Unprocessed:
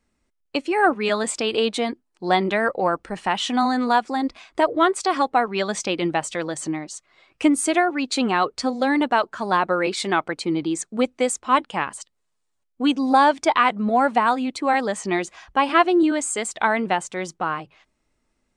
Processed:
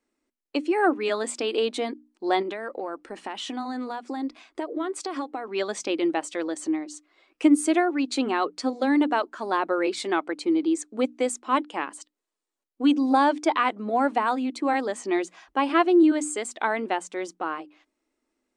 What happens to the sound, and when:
0:02.42–0:05.48: downward compressor, threshold −24 dBFS
whole clip: low shelf with overshoot 200 Hz −13 dB, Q 3; mains-hum notches 60/120/180/240/300 Hz; level −6 dB

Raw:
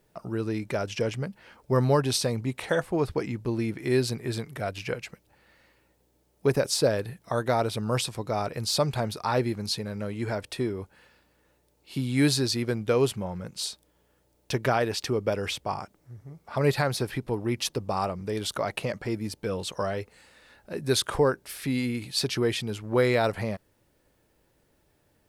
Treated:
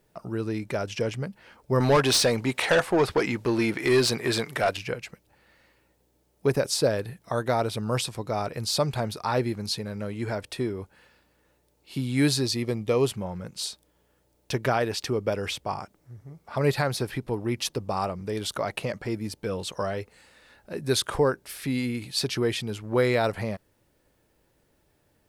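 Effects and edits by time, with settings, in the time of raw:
0:01.80–0:04.77: mid-hump overdrive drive 19 dB, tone 6,000 Hz, clips at −11.5 dBFS
0:12.41–0:13.05: Butterworth band-reject 1,500 Hz, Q 4.5

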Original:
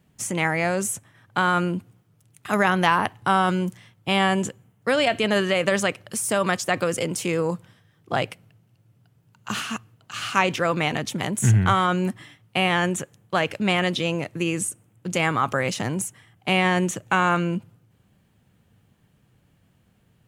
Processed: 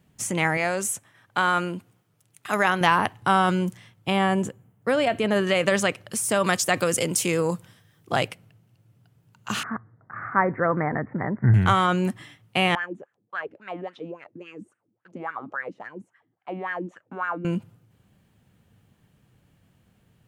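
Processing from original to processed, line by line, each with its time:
0:00.57–0:02.81: low-shelf EQ 260 Hz −10 dB
0:04.10–0:05.47: parametric band 4,600 Hz −8 dB 2.6 octaves
0:06.44–0:08.28: high-shelf EQ 5,500 Hz +9 dB
0:09.63–0:11.54: Butterworth low-pass 2,000 Hz 96 dB per octave
0:12.75–0:17.45: LFO wah 3.6 Hz 240–1,700 Hz, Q 5.2

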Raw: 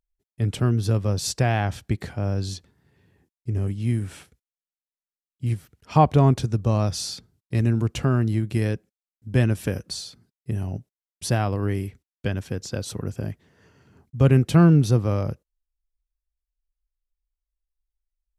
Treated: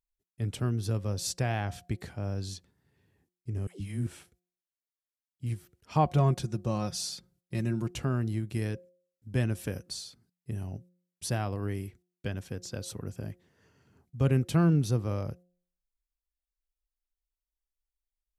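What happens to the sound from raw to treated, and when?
0:03.67–0:04.07: all-pass dispersion lows, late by 133 ms, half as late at 490 Hz
0:06.05–0:07.90: comb filter 5.6 ms, depth 60%
whole clip: high-shelf EQ 5,800 Hz +5 dB; hum removal 178.1 Hz, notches 4; level −8.5 dB

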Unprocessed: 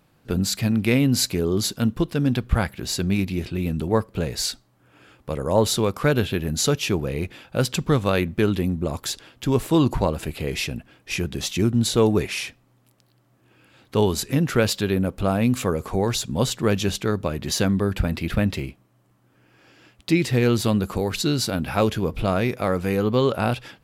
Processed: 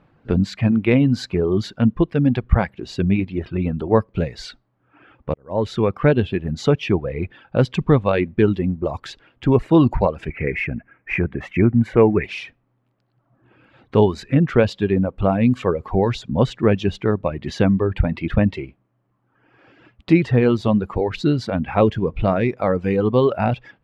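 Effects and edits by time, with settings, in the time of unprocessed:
0:05.34–0:05.93: fade in
0:10.30–0:12.24: drawn EQ curve 1,100 Hz 0 dB, 2,200 Hz +11 dB, 3,600 Hz −19 dB, 13,000 Hz −3 dB
whole clip: reverb reduction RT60 1.4 s; low-pass filter 2,100 Hz 12 dB per octave; dynamic equaliser 1,400 Hz, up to −5 dB, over −44 dBFS, Q 2.9; level +5.5 dB

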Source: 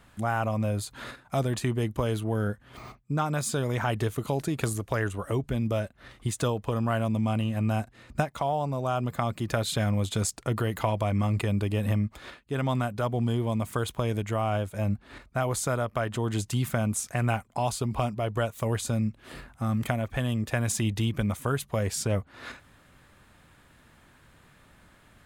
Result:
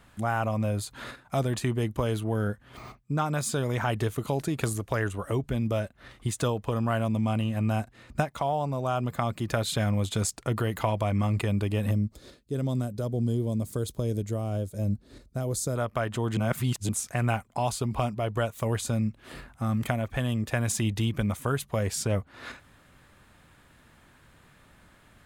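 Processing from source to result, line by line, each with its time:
0:11.91–0:15.76: flat-topped bell 1,500 Hz −14 dB 2.4 octaves
0:16.37–0:16.89: reverse

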